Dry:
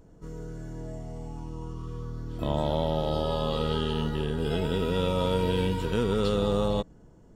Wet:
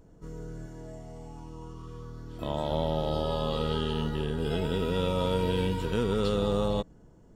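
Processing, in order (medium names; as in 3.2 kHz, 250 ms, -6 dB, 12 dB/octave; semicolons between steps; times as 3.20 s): 0.66–2.71 s: bass shelf 320 Hz -5.5 dB; trim -1.5 dB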